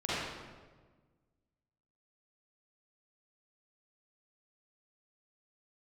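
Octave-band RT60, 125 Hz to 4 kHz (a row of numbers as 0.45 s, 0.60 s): 2.0 s, 1.8 s, 1.5 s, 1.3 s, 1.1 s, 0.95 s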